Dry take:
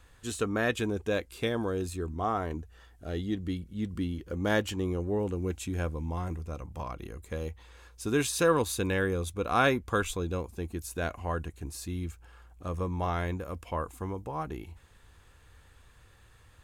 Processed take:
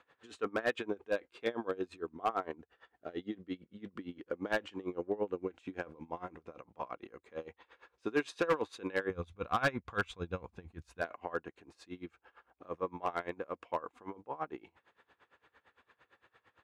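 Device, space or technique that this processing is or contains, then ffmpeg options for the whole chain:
helicopter radio: -filter_complex "[0:a]asplit=3[link_01][link_02][link_03];[link_01]afade=type=out:start_time=9.09:duration=0.02[link_04];[link_02]asubboost=boost=11.5:cutoff=100,afade=type=in:start_time=9.09:duration=0.02,afade=type=out:start_time=11:duration=0.02[link_05];[link_03]afade=type=in:start_time=11:duration=0.02[link_06];[link_04][link_05][link_06]amix=inputs=3:normalize=0,highpass=340,lowpass=2500,aeval=exprs='val(0)*pow(10,-22*(0.5-0.5*cos(2*PI*8.8*n/s))/20)':channel_layout=same,asoftclip=type=hard:threshold=-25.5dB,volume=3dB"

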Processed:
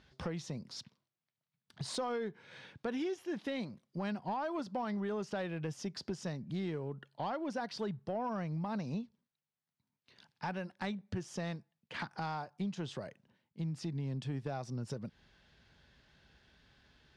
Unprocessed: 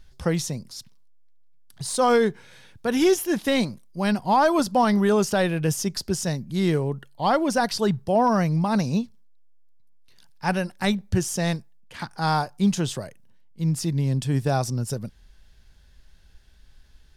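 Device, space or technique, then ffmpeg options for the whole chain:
AM radio: -af "highpass=130,lowpass=3800,acompressor=threshold=-36dB:ratio=5,asoftclip=type=tanh:threshold=-26.5dB"

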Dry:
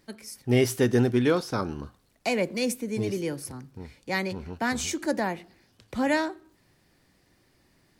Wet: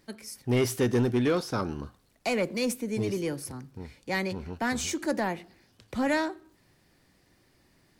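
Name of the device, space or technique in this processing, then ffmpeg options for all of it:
saturation between pre-emphasis and de-emphasis: -af "highshelf=frequency=4700:gain=10,asoftclip=type=tanh:threshold=-18dB,highshelf=frequency=4700:gain=-10"

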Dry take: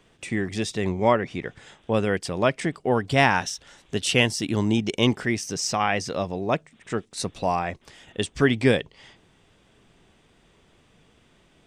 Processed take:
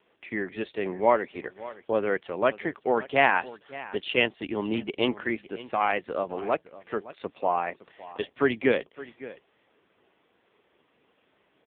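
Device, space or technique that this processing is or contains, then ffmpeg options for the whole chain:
satellite phone: -af "highpass=330,lowpass=3000,aecho=1:1:564:0.133" -ar 8000 -c:a libopencore_amrnb -b:a 5900

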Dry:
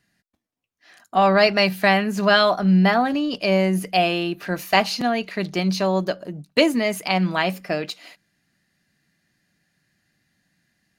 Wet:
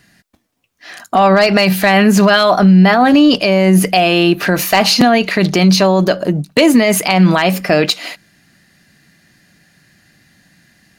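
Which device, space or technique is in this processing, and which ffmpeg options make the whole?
loud club master: -af "acompressor=threshold=-21dB:ratio=1.5,asoftclip=type=hard:threshold=-10.5dB,alimiter=level_in=18.5dB:limit=-1dB:release=50:level=0:latency=1,volume=-1dB"

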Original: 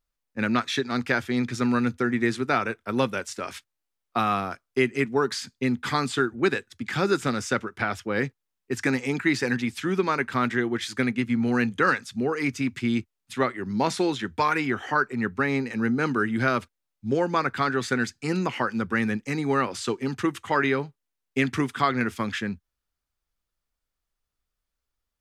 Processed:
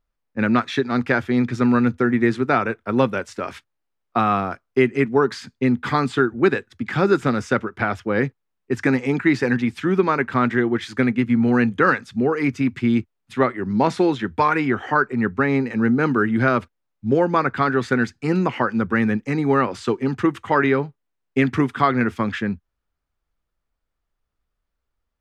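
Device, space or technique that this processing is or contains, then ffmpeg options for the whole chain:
through cloth: -af "highshelf=frequency=3400:gain=-15.5,volume=6.5dB"

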